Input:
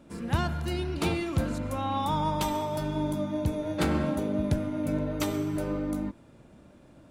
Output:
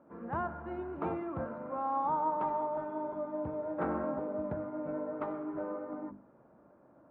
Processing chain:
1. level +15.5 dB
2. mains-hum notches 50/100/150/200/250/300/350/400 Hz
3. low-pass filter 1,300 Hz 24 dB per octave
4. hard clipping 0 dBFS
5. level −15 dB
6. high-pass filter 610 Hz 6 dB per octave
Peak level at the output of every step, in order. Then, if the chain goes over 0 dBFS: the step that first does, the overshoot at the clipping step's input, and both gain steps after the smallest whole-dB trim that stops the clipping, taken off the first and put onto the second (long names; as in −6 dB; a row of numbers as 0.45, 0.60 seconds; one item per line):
−1.5, −0.5, −1.5, −1.5, −16.5, −22.0 dBFS
no step passes full scale